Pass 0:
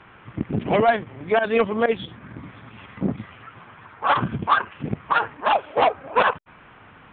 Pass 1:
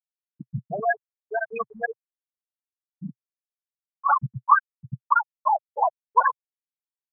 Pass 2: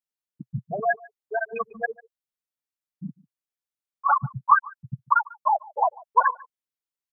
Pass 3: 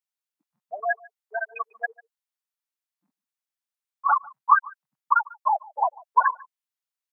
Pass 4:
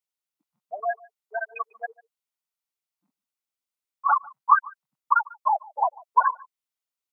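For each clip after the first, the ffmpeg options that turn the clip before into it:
-af "afftfilt=real='re*gte(hypot(re,im),0.562)':imag='im*gte(hypot(re,im),0.562)':win_size=1024:overlap=0.75,equalizer=f=125:t=o:w=1:g=12,equalizer=f=250:t=o:w=1:g=-10,equalizer=f=500:t=o:w=1:g=-6,equalizer=f=1000:t=o:w=1:g=11,equalizer=f=2000:t=o:w=1:g=9,volume=0.422"
-af "aecho=1:1:146:0.0668"
-af "highpass=f=700:w=0.5412,highpass=f=700:w=1.3066"
-af "bandreject=f=1700:w=8.2"

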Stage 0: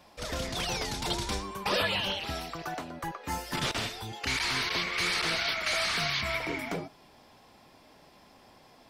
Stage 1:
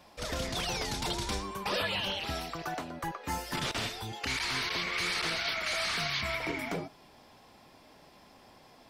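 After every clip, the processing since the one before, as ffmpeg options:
-af "alimiter=limit=0.0708:level=0:latency=1:release=99"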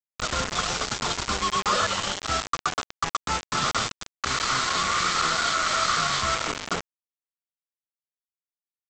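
-af "superequalizer=6b=0.631:10b=3.98:12b=0.501,aresample=16000,acrusher=bits=4:mix=0:aa=0.000001,aresample=44100,volume=1.58"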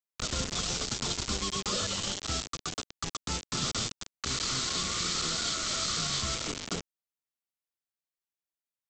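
-filter_complex "[0:a]acrossover=split=460|3000[s0][s1][s2];[s1]acompressor=threshold=0.00794:ratio=4[s3];[s0][s3][s2]amix=inputs=3:normalize=0,volume=0.841"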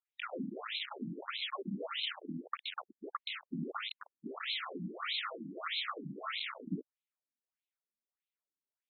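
-af "afftfilt=real='re*between(b*sr/1024,220*pow(3000/220,0.5+0.5*sin(2*PI*1.6*pts/sr))/1.41,220*pow(3000/220,0.5+0.5*sin(2*PI*1.6*pts/sr))*1.41)':imag='im*between(b*sr/1024,220*pow(3000/220,0.5+0.5*sin(2*PI*1.6*pts/sr))/1.41,220*pow(3000/220,0.5+0.5*sin(2*PI*1.6*pts/sr))*1.41)':win_size=1024:overlap=0.75,volume=1.41"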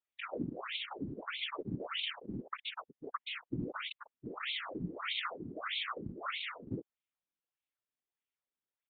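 -af "aresample=8000,aresample=44100,afftfilt=real='hypot(re,im)*cos(2*PI*random(0))':imag='hypot(re,im)*sin(2*PI*random(1))':win_size=512:overlap=0.75,volume=2.11"

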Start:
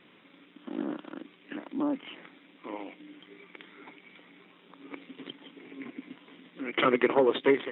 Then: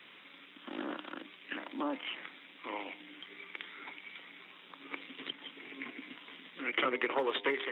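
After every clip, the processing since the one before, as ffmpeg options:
-filter_complex "[0:a]tiltshelf=f=750:g=-7.5,bandreject=f=100.9:t=h:w=4,bandreject=f=201.8:t=h:w=4,bandreject=f=302.7:t=h:w=4,bandreject=f=403.6:t=h:w=4,bandreject=f=504.5:t=h:w=4,bandreject=f=605.4:t=h:w=4,bandreject=f=706.3:t=h:w=4,bandreject=f=807.2:t=h:w=4,bandreject=f=908.1:t=h:w=4,bandreject=f=1009:t=h:w=4,acrossover=split=230|600|3000[s0][s1][s2][s3];[s0]acompressor=threshold=0.00178:ratio=4[s4];[s1]acompressor=threshold=0.02:ratio=4[s5];[s2]acompressor=threshold=0.0224:ratio=4[s6];[s3]acompressor=threshold=0.00501:ratio=4[s7];[s4][s5][s6][s7]amix=inputs=4:normalize=0"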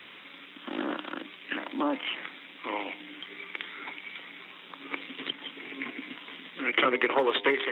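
-af "equalizer=f=79:t=o:w=0.27:g=14.5,volume=2.24"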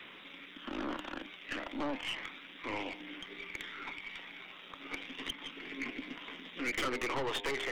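-af "aeval=exprs='(tanh(28.2*val(0)+0.3)-tanh(0.3))/28.2':c=same,aphaser=in_gain=1:out_gain=1:delay=1.6:decay=0.24:speed=0.32:type=triangular,volume=0.794"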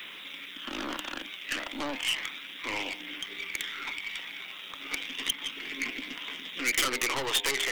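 -af "crystalizer=i=6.5:c=0"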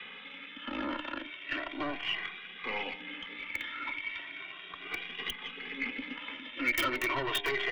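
-filter_complex "[0:a]acrossover=split=760|3200[s0][s1][s2];[s2]acrusher=bits=2:mix=0:aa=0.5[s3];[s0][s1][s3]amix=inputs=3:normalize=0,asplit=2[s4][s5];[s5]adelay=2,afreqshift=0.36[s6];[s4][s6]amix=inputs=2:normalize=1,volume=1.41"

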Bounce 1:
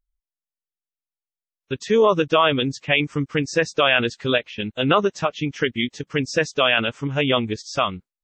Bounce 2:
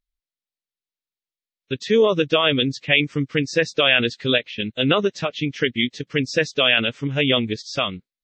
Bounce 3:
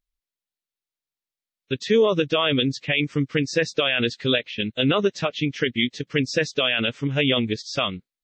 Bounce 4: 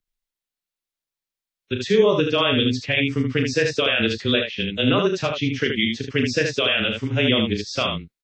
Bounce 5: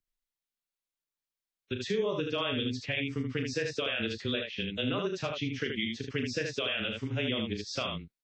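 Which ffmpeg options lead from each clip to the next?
-af "equalizer=f=125:t=o:w=1:g=6,equalizer=f=250:t=o:w=1:g=6,equalizer=f=500:t=o:w=1:g=6,equalizer=f=1000:t=o:w=1:g=-4,equalizer=f=2000:t=o:w=1:g=7,equalizer=f=4000:t=o:w=1:g=11,volume=0.473"
-af "alimiter=limit=0.316:level=0:latency=1:release=37"
-af "afreqshift=-16,aecho=1:1:36|76:0.447|0.562"
-af "acompressor=threshold=0.0398:ratio=2,volume=0.531"

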